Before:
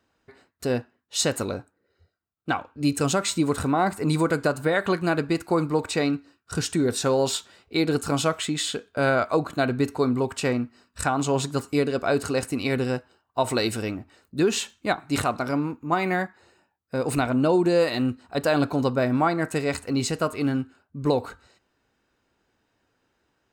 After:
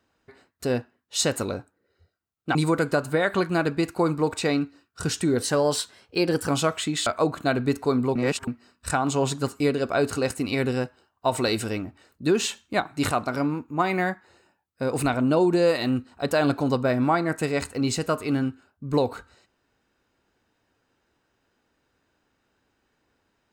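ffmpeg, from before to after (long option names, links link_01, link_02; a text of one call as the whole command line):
ffmpeg -i in.wav -filter_complex "[0:a]asplit=7[link_01][link_02][link_03][link_04][link_05][link_06][link_07];[link_01]atrim=end=2.552[link_08];[link_02]atrim=start=4.068:end=6.944[link_09];[link_03]atrim=start=6.94:end=8.1,asetpts=PTS-STARTPTS,asetrate=48069,aresample=44100,atrim=end_sample=46932,asetpts=PTS-STARTPTS[link_10];[link_04]atrim=start=8.096:end=8.682[link_11];[link_05]atrim=start=9.188:end=10.282[link_12];[link_06]atrim=start=10.278:end=10.602,asetpts=PTS-STARTPTS,areverse[link_13];[link_07]atrim=start=10.598[link_14];[link_08][link_09]acrossfade=duration=0.004:curve1=hsin:curve2=hsin[link_15];[link_15][link_10]acrossfade=duration=0.004:curve1=hsin:curve2=hsin[link_16];[link_16][link_11]acrossfade=duration=0.004:curve1=hsin:curve2=hsin[link_17];[link_17][link_12]acrossfade=duration=0.004:curve1=hsin:curve2=hsin[link_18];[link_18][link_13]acrossfade=duration=0.004:curve1=hsin:curve2=hsin[link_19];[link_19][link_14]acrossfade=duration=0.004:curve1=hsin:curve2=hsin" out.wav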